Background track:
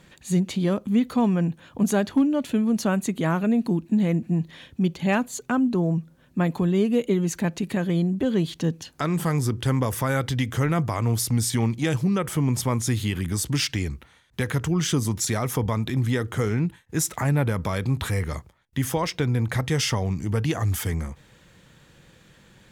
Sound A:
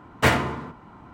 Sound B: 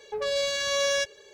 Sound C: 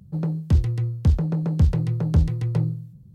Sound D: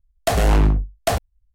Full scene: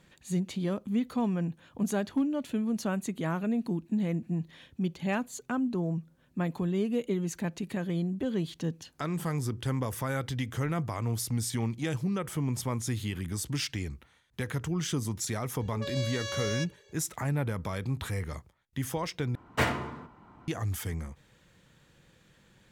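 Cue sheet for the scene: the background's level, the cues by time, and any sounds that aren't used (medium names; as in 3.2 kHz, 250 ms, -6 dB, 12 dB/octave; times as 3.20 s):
background track -8 dB
15.60 s: add B -9 dB
19.35 s: replace with A -8 dB
not used: C, D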